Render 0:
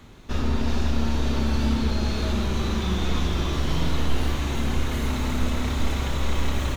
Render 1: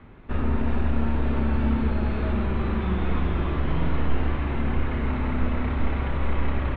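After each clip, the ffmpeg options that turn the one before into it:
ffmpeg -i in.wav -af "lowpass=frequency=2400:width=0.5412,lowpass=frequency=2400:width=1.3066" out.wav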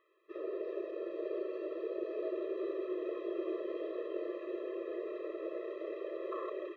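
ffmpeg -i in.wav -af "afwtdn=0.0398,aemphasis=mode=production:type=75kf,afftfilt=real='re*eq(mod(floor(b*sr/1024/340),2),1)':imag='im*eq(mod(floor(b*sr/1024/340),2),1)':win_size=1024:overlap=0.75,volume=-1dB" out.wav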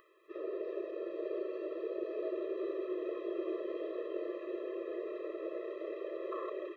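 ffmpeg -i in.wav -af "acompressor=mode=upward:threshold=-59dB:ratio=2.5" out.wav

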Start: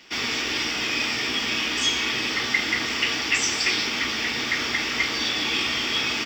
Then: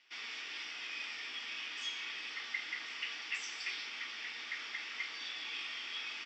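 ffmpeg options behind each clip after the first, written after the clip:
ffmpeg -i in.wav -af "lowpass=2400,aderivative,volume=-3.5dB" out.wav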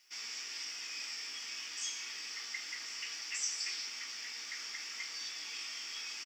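ffmpeg -i in.wav -filter_complex "[0:a]aexciter=amount=8:drive=6.6:freq=5200,asplit=2[link_01][link_02];[link_02]adelay=17,volume=-12dB[link_03];[link_01][link_03]amix=inputs=2:normalize=0,volume=-4dB" out.wav

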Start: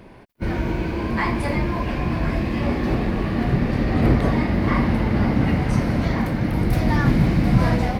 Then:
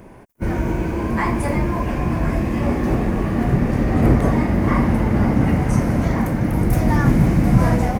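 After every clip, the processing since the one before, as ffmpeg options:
ffmpeg -i in.wav -af "firequalizer=gain_entry='entry(950,0);entry(4200,-10);entry(6400,5)':delay=0.05:min_phase=1,volume=2.5dB" out.wav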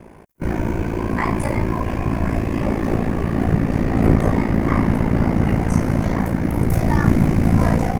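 ffmpeg -i in.wav -af "aeval=exprs='val(0)*sin(2*PI*28*n/s)':channel_layout=same,volume=2.5dB" out.wav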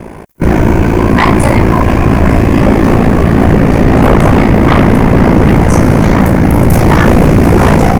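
ffmpeg -i in.wav -af "aeval=exprs='0.891*sin(PI/2*3.98*val(0)/0.891)':channel_layout=same" out.wav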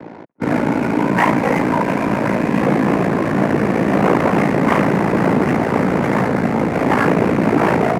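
ffmpeg -i in.wav -af "highpass=frequency=250:width_type=q:width=0.5412,highpass=frequency=250:width_type=q:width=1.307,lowpass=frequency=2900:width_type=q:width=0.5176,lowpass=frequency=2900:width_type=q:width=0.7071,lowpass=frequency=2900:width_type=q:width=1.932,afreqshift=-65,adynamicsmooth=sensitivity=5:basefreq=1100,volume=-5dB" out.wav

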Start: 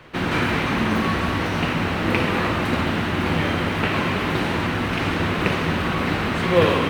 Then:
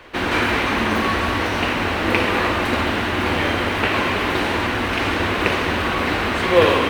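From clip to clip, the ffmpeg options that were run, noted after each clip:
ffmpeg -i in.wav -af "equalizer=frequency=150:width_type=o:width=0.86:gain=-14.5,bandreject=frequency=1300:width=29,volume=4dB" out.wav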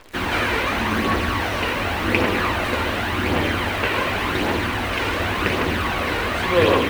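ffmpeg -i in.wav -af "acrusher=bits=7:dc=4:mix=0:aa=0.000001,aphaser=in_gain=1:out_gain=1:delay=2.2:decay=0.38:speed=0.89:type=triangular,volume=-2.5dB" out.wav

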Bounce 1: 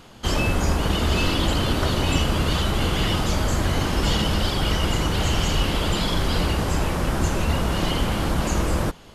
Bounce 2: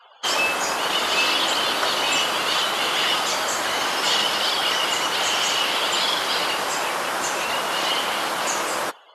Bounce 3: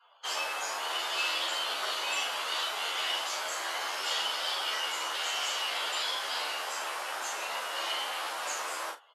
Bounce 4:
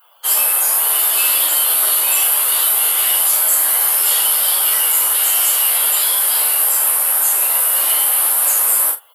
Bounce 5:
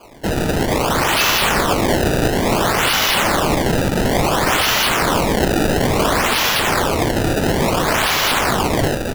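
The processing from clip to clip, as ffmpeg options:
ffmpeg -i in.wav -af "highpass=720,afftdn=noise_reduction=35:noise_floor=-49,volume=6.5dB" out.wav
ffmpeg -i in.wav -filter_complex "[0:a]highpass=550,asplit=2[link_01][link_02];[link_02]aecho=0:1:38|77:0.631|0.141[link_03];[link_01][link_03]amix=inputs=2:normalize=0,asplit=2[link_04][link_05];[link_05]adelay=11.9,afreqshift=1.9[link_06];[link_04][link_06]amix=inputs=2:normalize=1,volume=-9dB" out.wav
ffmpeg -i in.wav -af "lowshelf=frequency=390:gain=3.5,aexciter=amount=11.6:drive=8:freq=9100,highshelf=frequency=7300:gain=10.5,volume=6.5dB" out.wav
ffmpeg -i in.wav -filter_complex "[0:a]asplit=2[link_01][link_02];[link_02]highpass=frequency=720:poles=1,volume=21dB,asoftclip=type=tanh:threshold=-1dB[link_03];[link_01][link_03]amix=inputs=2:normalize=0,lowpass=frequency=2200:poles=1,volume=-6dB,aecho=1:1:351|702|1053|1404|1755|2106|2457:0.562|0.304|0.164|0.0885|0.0478|0.0258|0.0139,acrusher=samples=23:mix=1:aa=0.000001:lfo=1:lforange=36.8:lforate=0.58" out.wav

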